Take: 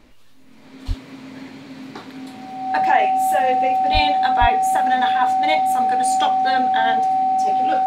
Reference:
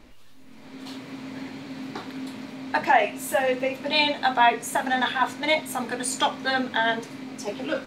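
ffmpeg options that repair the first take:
-filter_complex "[0:a]bandreject=f=760:w=30,asplit=3[a][b][c];[a]afade=t=out:st=0.87:d=0.02[d];[b]highpass=f=140:w=0.5412,highpass=f=140:w=1.3066,afade=t=in:st=0.87:d=0.02,afade=t=out:st=0.99:d=0.02[e];[c]afade=t=in:st=0.99:d=0.02[f];[d][e][f]amix=inputs=3:normalize=0,asplit=3[g][h][i];[g]afade=t=out:st=3.93:d=0.02[j];[h]highpass=f=140:w=0.5412,highpass=f=140:w=1.3066,afade=t=in:st=3.93:d=0.02,afade=t=out:st=4.05:d=0.02[k];[i]afade=t=in:st=4.05:d=0.02[l];[j][k][l]amix=inputs=3:normalize=0,asplit=3[m][n][o];[m]afade=t=out:st=4.4:d=0.02[p];[n]highpass=f=140:w=0.5412,highpass=f=140:w=1.3066,afade=t=in:st=4.4:d=0.02,afade=t=out:st=4.52:d=0.02[q];[o]afade=t=in:st=4.52:d=0.02[r];[p][q][r]amix=inputs=3:normalize=0"

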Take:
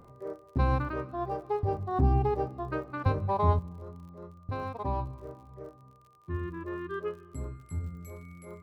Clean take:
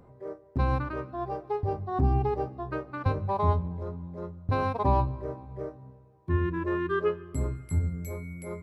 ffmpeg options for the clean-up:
-af "adeclick=t=4,bandreject=f=1.2k:w=30,asetnsamples=n=441:p=0,asendcmd='3.59 volume volume 8dB',volume=0dB"

